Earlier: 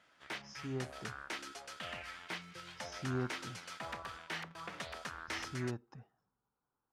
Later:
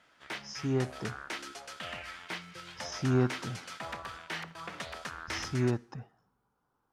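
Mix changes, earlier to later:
speech +9.5 dB
reverb: on, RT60 0.60 s

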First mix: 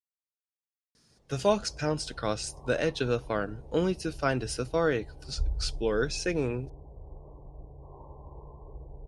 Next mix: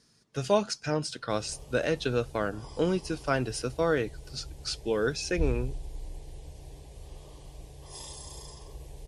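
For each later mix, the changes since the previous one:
speech: entry −0.95 s
background: remove Butterworth low-pass 1,100 Hz 96 dB per octave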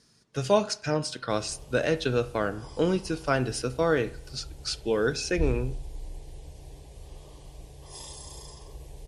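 reverb: on, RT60 0.55 s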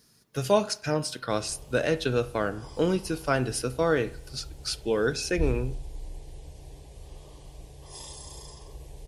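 speech: remove low-pass filter 8,800 Hz 24 dB per octave

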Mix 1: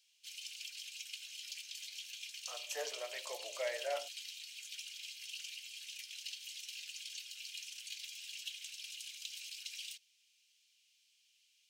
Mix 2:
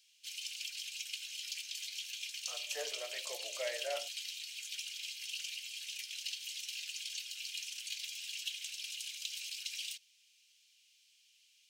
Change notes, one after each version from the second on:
background +4.5 dB
master: add parametric band 930 Hz −5 dB 0.62 octaves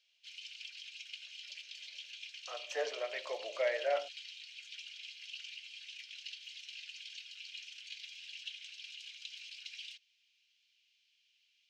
speech +7.5 dB
master: add high-frequency loss of the air 200 metres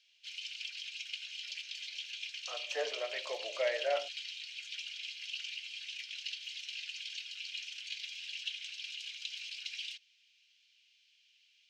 background +5.5 dB

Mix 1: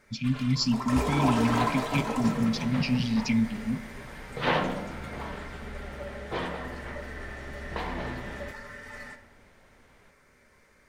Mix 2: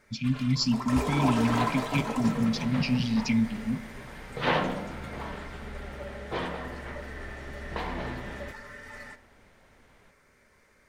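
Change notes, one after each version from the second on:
first sound: send −6.5 dB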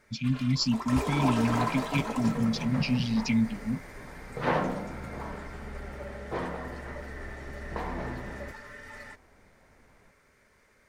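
second sound: add parametric band 3,300 Hz −11.5 dB 1.2 octaves
reverb: off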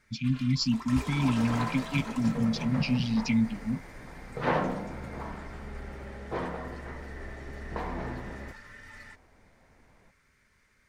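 first sound: add parametric band 550 Hz −11.5 dB 1.9 octaves
master: add high-shelf EQ 8,100 Hz −6 dB

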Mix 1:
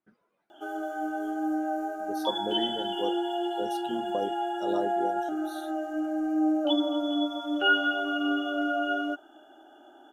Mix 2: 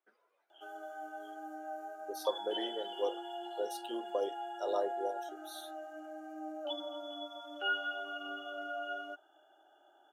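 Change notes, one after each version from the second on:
background −10.5 dB
master: add high-pass filter 420 Hz 24 dB per octave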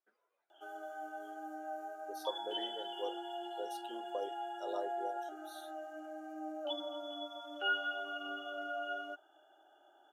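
speech −6.5 dB

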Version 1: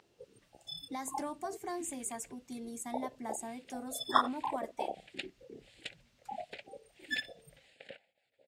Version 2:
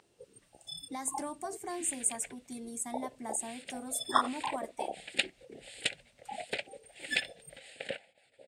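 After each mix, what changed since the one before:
second sound +11.5 dB
master: add parametric band 8,800 Hz +11.5 dB 0.35 octaves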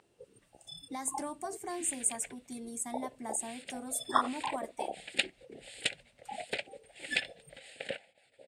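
first sound: add high-shelf EQ 4,000 Hz −9 dB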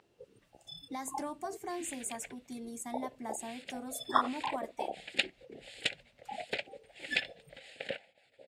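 master: add parametric band 8,800 Hz −11.5 dB 0.35 octaves

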